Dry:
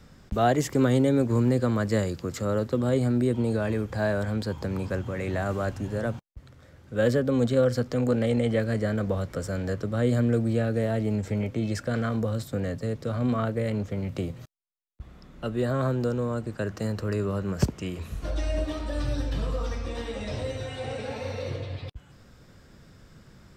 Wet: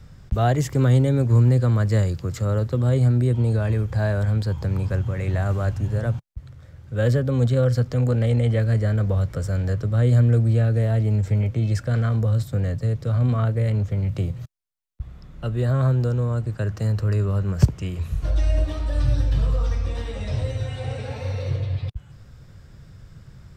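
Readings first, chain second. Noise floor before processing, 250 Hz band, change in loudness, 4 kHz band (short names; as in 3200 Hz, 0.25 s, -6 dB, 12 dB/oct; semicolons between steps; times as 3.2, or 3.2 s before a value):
-54 dBFS, -0.5 dB, +5.5 dB, n/a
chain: resonant low shelf 170 Hz +8.5 dB, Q 1.5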